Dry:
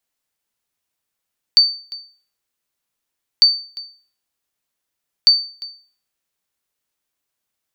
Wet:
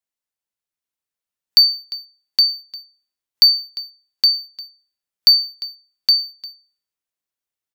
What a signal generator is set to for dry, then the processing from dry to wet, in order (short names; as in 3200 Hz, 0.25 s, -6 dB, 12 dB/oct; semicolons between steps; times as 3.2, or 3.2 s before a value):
sonar ping 4570 Hz, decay 0.42 s, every 1.85 s, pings 3, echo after 0.35 s, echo -20 dB -3.5 dBFS
spectral noise reduction 9 dB; on a send: echo 0.817 s -4.5 dB; on the sum: sample leveller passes 1